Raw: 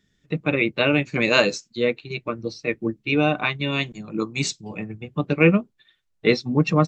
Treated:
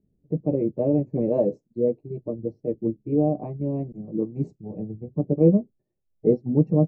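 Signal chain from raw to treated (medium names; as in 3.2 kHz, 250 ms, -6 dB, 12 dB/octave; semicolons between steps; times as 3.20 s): inverse Chebyshev low-pass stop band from 1.3 kHz, stop band 40 dB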